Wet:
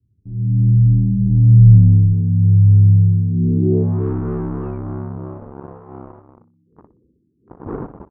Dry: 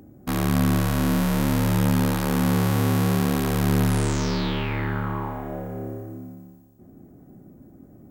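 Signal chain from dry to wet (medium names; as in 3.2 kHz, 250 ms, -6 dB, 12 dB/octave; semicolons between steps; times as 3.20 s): wind noise 410 Hz -36 dBFS; Doppler pass-by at 1.77 s, 25 m/s, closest 3.6 m; high-pass 48 Hz 12 dB/octave; spectral gate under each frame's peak -15 dB strong; elliptic band-stop 410–2400 Hz; resonant low shelf 760 Hz +9.5 dB, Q 3; level rider gain up to 11 dB; waveshaping leveller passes 3; in parallel at -3 dB: compression, threshold -22 dBFS, peak gain reduction 16.5 dB; on the sum: low-pass sweep 110 Hz -> 1.2 kHz, 3.28–4.04 s; on a send: flutter echo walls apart 10.5 m, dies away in 0.25 s; on the sum: resampled via 8 kHz; trim -6.5 dB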